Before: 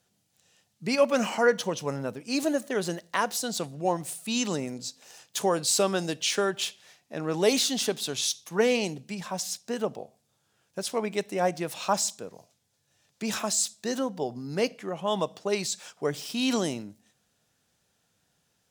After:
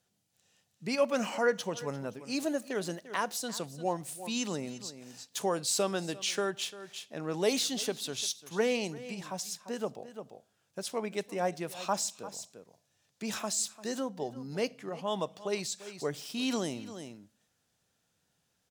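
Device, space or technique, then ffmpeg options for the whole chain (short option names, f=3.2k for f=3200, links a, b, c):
ducked delay: -filter_complex "[0:a]asplit=3[a][b][c];[b]adelay=346,volume=-6.5dB[d];[c]apad=whole_len=840172[e];[d][e]sidechaincompress=threshold=-38dB:ratio=12:attack=7:release=335[f];[a][f]amix=inputs=2:normalize=0,volume=-5.5dB"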